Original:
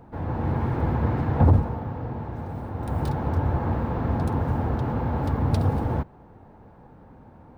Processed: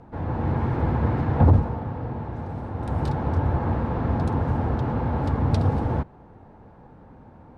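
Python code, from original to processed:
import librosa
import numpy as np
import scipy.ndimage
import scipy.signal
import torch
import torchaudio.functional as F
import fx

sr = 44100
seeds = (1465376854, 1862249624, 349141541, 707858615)

y = scipy.signal.sosfilt(scipy.signal.butter(2, 7500.0, 'lowpass', fs=sr, output='sos'), x)
y = y * librosa.db_to_amplitude(1.0)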